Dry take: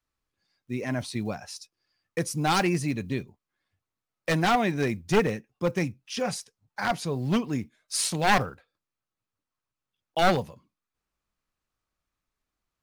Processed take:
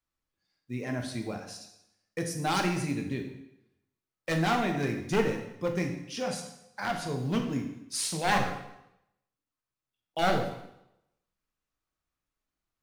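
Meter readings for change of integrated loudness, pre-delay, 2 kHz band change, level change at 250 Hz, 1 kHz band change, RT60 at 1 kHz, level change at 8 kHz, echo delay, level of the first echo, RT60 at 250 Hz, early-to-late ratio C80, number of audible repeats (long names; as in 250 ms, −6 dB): −3.5 dB, 6 ms, −3.5 dB, −3.0 dB, −4.0 dB, 0.85 s, −3.5 dB, no echo audible, no echo audible, 0.80 s, 9.0 dB, no echo audible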